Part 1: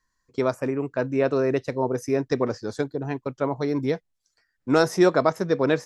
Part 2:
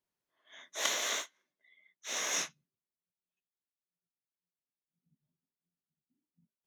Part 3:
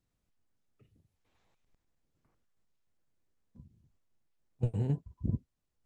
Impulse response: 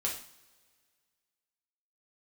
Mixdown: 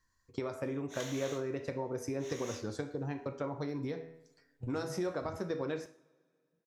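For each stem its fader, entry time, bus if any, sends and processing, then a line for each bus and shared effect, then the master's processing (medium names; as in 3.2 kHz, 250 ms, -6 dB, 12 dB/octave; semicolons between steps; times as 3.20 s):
-3.0 dB, 0.00 s, bus A, send -15 dB, de-hum 80.98 Hz, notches 36; compression, threshold -24 dBFS, peak gain reduction 11 dB
-12.5 dB, 0.15 s, no bus, send -11.5 dB, auto duck -7 dB, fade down 1.90 s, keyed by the first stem
-13.5 dB, 0.00 s, bus A, no send, none
bus A: 0.0 dB, peaking EQ 89 Hz +9 dB 0.83 oct; compression 4:1, threshold -38 dBFS, peak gain reduction 11.5 dB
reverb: on, pre-delay 3 ms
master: none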